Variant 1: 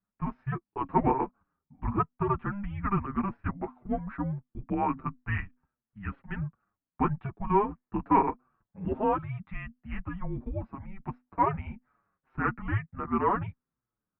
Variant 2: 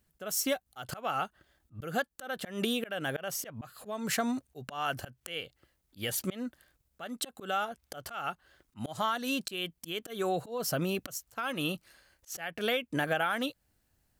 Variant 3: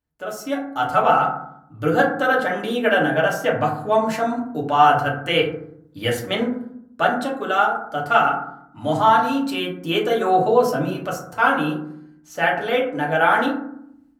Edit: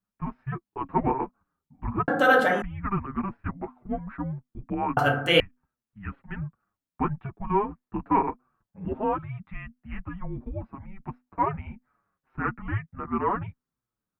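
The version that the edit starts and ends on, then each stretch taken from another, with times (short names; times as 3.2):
1
2.08–2.62 from 3
4.97–5.4 from 3
not used: 2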